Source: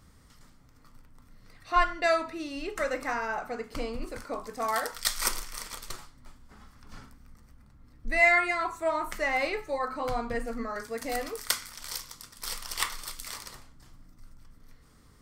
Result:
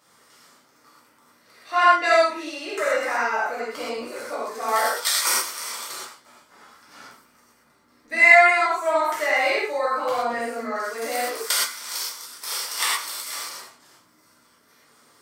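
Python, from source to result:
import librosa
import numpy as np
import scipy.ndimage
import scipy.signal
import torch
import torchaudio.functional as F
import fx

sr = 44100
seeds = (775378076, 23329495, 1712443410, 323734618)

y = scipy.signal.sosfilt(scipy.signal.butter(2, 420.0, 'highpass', fs=sr, output='sos'), x)
y = fx.rev_gated(y, sr, seeds[0], gate_ms=150, shape='flat', drr_db=-8.0)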